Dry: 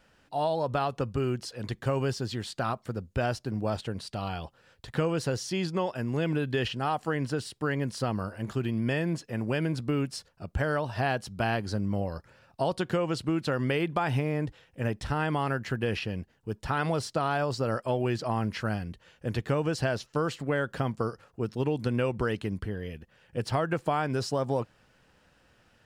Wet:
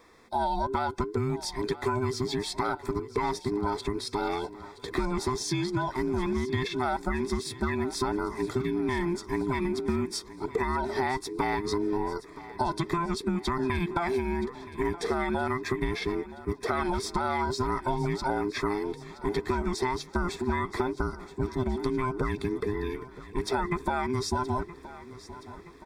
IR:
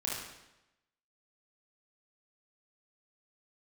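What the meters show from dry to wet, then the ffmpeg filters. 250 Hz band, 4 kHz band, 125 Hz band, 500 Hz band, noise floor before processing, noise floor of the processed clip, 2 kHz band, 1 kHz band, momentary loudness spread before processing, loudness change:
+1.0 dB, +1.0 dB, −4.0 dB, +0.5 dB, −65 dBFS, −48 dBFS, −0.5 dB, +3.0 dB, 8 LU, +0.5 dB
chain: -filter_complex "[0:a]afftfilt=real='real(if(between(b,1,1008),(2*floor((b-1)/24)+1)*24-b,b),0)':imag='imag(if(between(b,1,1008),(2*floor((b-1)/24)+1)*24-b,b),0)*if(between(b,1,1008),-1,1)':win_size=2048:overlap=0.75,acompressor=threshold=-31dB:ratio=6,asuperstop=centerf=2900:order=8:qfactor=5.6,asplit=2[link_01][link_02];[link_02]aecho=0:1:972|1944|2916|3888|4860:0.15|0.0853|0.0486|0.0277|0.0158[link_03];[link_01][link_03]amix=inputs=2:normalize=0,volume=6dB"

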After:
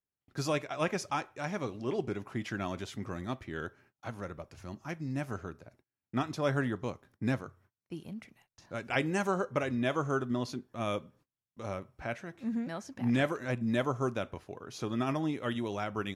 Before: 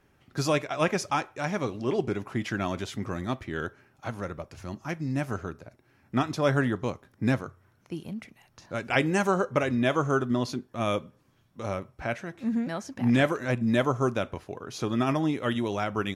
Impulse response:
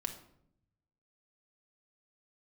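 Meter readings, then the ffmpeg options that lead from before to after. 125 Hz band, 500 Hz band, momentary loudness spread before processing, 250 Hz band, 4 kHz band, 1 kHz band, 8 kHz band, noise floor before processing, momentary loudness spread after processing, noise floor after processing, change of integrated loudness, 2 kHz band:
−6.0 dB, −6.0 dB, 14 LU, −6.0 dB, −6.0 dB, −6.0 dB, −6.0 dB, −65 dBFS, 14 LU, below −85 dBFS, −6.0 dB, −6.0 dB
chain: -af "agate=range=-29dB:threshold=-56dB:ratio=16:detection=peak,volume=-6dB"

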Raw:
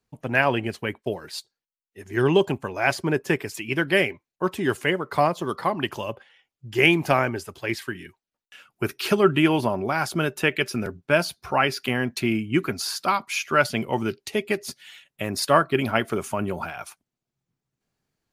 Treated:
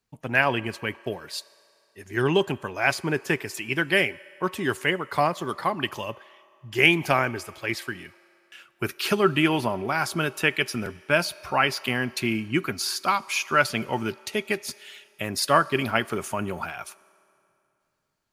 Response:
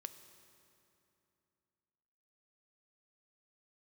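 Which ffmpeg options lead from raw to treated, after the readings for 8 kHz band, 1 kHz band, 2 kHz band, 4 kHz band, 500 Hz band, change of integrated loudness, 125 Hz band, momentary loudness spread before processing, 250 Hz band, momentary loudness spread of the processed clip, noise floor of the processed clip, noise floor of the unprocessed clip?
+1.0 dB, −1.0 dB, +0.5 dB, +1.0 dB, −3.0 dB, −1.0 dB, −2.5 dB, 12 LU, −3.0 dB, 12 LU, −70 dBFS, below −85 dBFS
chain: -filter_complex "[0:a]asplit=2[link_01][link_02];[link_02]highpass=750[link_03];[1:a]atrim=start_sample=2205[link_04];[link_03][link_04]afir=irnorm=-1:irlink=0,volume=-1.5dB[link_05];[link_01][link_05]amix=inputs=2:normalize=0,volume=-2.5dB"

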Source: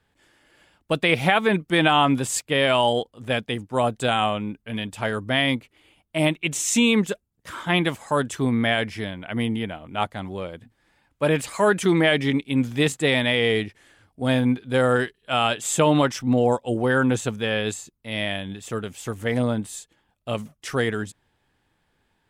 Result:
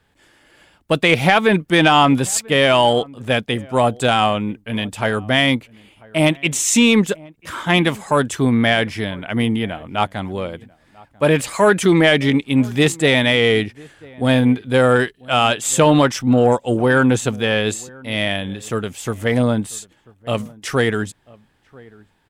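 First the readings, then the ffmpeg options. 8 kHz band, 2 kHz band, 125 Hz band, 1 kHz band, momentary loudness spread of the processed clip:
+6.5 dB, +5.5 dB, +6.0 dB, +5.5 dB, 12 LU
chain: -filter_complex "[0:a]acontrast=64,asplit=2[link_01][link_02];[link_02]adelay=991.3,volume=-24dB,highshelf=frequency=4000:gain=-22.3[link_03];[link_01][link_03]amix=inputs=2:normalize=0"

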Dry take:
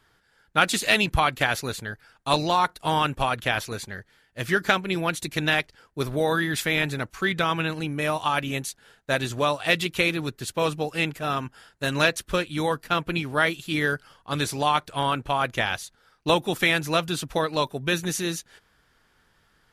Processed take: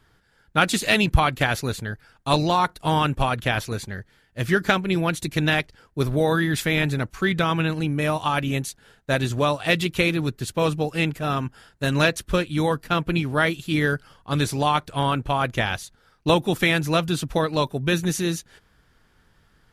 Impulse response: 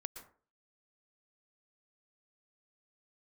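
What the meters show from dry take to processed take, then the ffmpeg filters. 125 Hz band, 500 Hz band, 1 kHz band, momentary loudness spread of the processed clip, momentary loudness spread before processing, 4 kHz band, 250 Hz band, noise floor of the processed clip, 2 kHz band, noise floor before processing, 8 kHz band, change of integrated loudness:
+7.0 dB, +2.5 dB, +1.0 dB, 9 LU, 11 LU, 0.0 dB, +5.0 dB, −61 dBFS, 0.0 dB, −65 dBFS, 0.0 dB, +2.0 dB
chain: -af "lowshelf=frequency=310:gain=8.5"

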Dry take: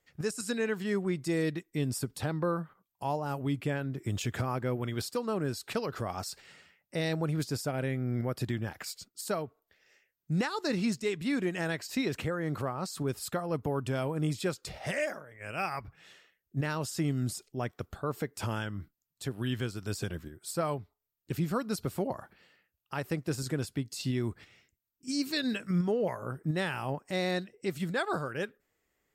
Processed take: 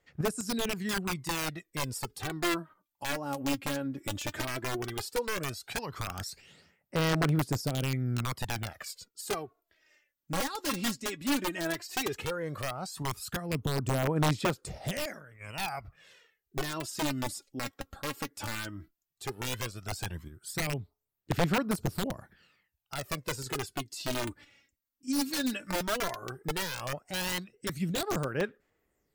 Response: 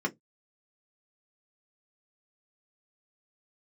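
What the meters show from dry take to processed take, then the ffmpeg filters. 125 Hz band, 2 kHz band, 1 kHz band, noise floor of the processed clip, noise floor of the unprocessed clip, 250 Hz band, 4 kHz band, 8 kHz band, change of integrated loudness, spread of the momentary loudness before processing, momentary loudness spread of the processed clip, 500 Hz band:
−1.0 dB, +2.0 dB, +1.5 dB, −85 dBFS, −84 dBFS, −1.5 dB, +4.0 dB, +4.0 dB, 0.0 dB, 8 LU, 10 LU, −2.0 dB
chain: -af "aeval=exprs='(mod(15*val(0)+1,2)-1)/15':channel_layout=same,aphaser=in_gain=1:out_gain=1:delay=3.7:decay=0.59:speed=0.14:type=sinusoidal,volume=-3dB"

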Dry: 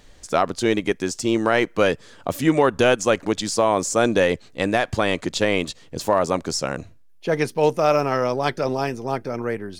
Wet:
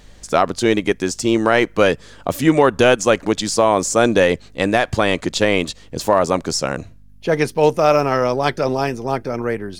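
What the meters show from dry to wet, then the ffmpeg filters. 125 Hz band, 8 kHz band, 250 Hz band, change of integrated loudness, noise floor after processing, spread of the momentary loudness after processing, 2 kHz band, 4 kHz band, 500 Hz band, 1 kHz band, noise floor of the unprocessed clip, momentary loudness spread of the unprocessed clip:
+4.0 dB, +4.0 dB, +4.0 dB, +4.0 dB, −43 dBFS, 9 LU, +4.0 dB, +4.0 dB, +4.0 dB, +4.0 dB, −48 dBFS, 9 LU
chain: -af "aeval=exprs='val(0)+0.00251*(sin(2*PI*50*n/s)+sin(2*PI*2*50*n/s)/2+sin(2*PI*3*50*n/s)/3+sin(2*PI*4*50*n/s)/4+sin(2*PI*5*50*n/s)/5)':channel_layout=same,volume=4dB"

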